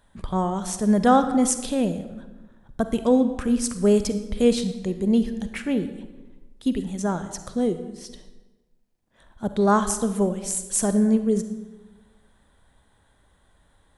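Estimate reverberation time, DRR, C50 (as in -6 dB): 1.1 s, 9.5 dB, 10.0 dB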